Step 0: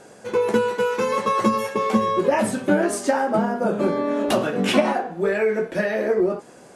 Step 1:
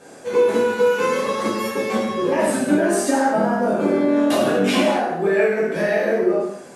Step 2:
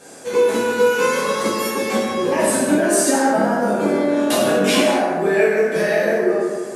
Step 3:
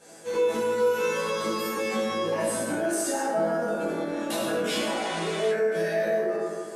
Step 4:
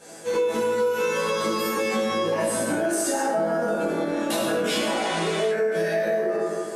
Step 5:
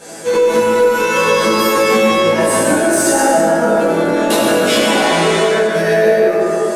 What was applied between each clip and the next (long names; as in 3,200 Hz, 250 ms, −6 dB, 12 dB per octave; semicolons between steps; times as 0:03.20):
low-shelf EQ 84 Hz −8.5 dB; downward compressor 2.5 to 1, threshold −21 dBFS, peak gain reduction 6.5 dB; reverb whose tail is shaped and stops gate 280 ms falling, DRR −8 dB; level −3.5 dB
high-shelf EQ 3,800 Hz +9.5 dB; on a send: bucket-brigade delay 156 ms, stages 2,048, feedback 54%, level −7 dB
healed spectral selection 0:04.98–0:05.48, 1,000–11,000 Hz before; resonators tuned to a chord A2 fifth, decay 0.27 s; in parallel at +2 dB: brickwall limiter −26.5 dBFS, peak gain reduction 11.5 dB; on the sum: level −2.5 dB
downward compressor 4 to 1, threshold −26 dBFS, peak gain reduction 6.5 dB; level +5.5 dB
dense smooth reverb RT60 1.9 s, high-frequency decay 0.65×, pre-delay 110 ms, DRR 2.5 dB; in parallel at −9.5 dB: hard clipping −25 dBFS, distortion −8 dB; on the sum: level +8.5 dB